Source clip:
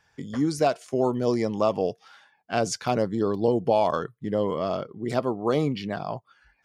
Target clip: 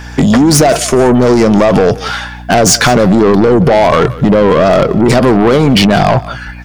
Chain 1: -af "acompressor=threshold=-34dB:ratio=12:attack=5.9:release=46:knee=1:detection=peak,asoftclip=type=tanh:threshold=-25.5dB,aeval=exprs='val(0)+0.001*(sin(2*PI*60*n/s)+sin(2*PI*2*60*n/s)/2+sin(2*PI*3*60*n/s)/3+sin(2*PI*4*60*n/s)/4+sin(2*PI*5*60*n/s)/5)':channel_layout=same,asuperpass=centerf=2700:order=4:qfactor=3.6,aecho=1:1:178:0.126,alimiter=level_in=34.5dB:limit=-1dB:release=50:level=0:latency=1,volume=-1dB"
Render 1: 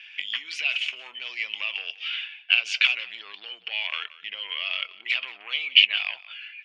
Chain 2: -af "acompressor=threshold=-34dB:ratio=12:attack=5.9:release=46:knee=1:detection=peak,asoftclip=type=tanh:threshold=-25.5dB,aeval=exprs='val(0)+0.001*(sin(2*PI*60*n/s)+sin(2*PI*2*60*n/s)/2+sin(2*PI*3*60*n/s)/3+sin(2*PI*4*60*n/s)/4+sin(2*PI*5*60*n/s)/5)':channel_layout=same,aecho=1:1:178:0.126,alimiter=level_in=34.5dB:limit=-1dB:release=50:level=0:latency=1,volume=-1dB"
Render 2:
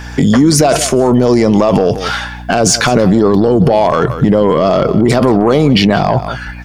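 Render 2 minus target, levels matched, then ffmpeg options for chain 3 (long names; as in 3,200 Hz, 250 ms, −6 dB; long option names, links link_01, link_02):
soft clipping: distortion −13 dB
-af "acompressor=threshold=-34dB:ratio=12:attack=5.9:release=46:knee=1:detection=peak,asoftclip=type=tanh:threshold=-37dB,aeval=exprs='val(0)+0.001*(sin(2*PI*60*n/s)+sin(2*PI*2*60*n/s)/2+sin(2*PI*3*60*n/s)/3+sin(2*PI*4*60*n/s)/4+sin(2*PI*5*60*n/s)/5)':channel_layout=same,aecho=1:1:178:0.126,alimiter=level_in=34.5dB:limit=-1dB:release=50:level=0:latency=1,volume=-1dB"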